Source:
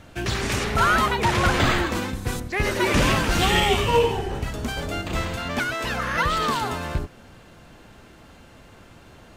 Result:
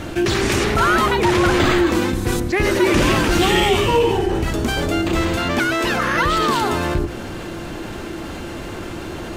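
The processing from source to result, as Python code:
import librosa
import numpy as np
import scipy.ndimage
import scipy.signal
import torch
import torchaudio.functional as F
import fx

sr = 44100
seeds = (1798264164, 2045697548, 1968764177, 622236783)

y = fx.peak_eq(x, sr, hz=340.0, db=11.5, octaves=0.32)
y = fx.hum_notches(y, sr, base_hz=60, count=2)
y = fx.env_flatten(y, sr, amount_pct=50)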